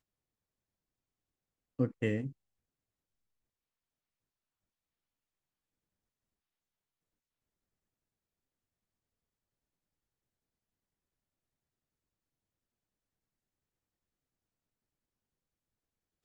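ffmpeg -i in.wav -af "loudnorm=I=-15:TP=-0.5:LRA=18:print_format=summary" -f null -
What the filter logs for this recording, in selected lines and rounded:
Input Integrated:    -35.2 LUFS
Input True Peak:     -17.3 dBTP
Input LRA:             2.5 LU
Input Threshold:     -46.2 LUFS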